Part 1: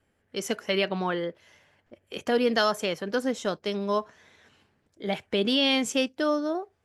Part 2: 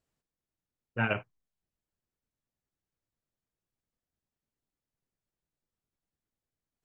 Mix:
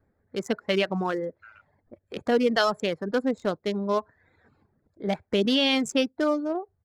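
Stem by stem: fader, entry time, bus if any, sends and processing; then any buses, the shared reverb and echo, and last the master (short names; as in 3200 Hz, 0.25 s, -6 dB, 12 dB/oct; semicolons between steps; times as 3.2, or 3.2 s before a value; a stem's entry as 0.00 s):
+1.5 dB, 0.00 s, no send, Wiener smoothing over 15 samples
+2.5 dB, 0.45 s, no send, compressor, threshold -33 dBFS, peak gain reduction 9.5 dB; ladder high-pass 1300 Hz, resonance 80%; auto duck -14 dB, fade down 1.80 s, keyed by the first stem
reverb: off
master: reverb removal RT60 0.57 s; low shelf 210 Hz +4.5 dB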